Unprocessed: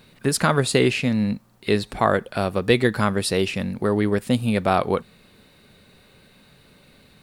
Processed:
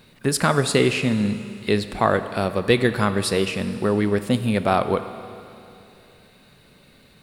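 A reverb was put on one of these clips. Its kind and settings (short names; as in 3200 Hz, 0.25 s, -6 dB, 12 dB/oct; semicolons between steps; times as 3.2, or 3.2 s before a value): Schroeder reverb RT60 2.8 s, combs from 27 ms, DRR 11 dB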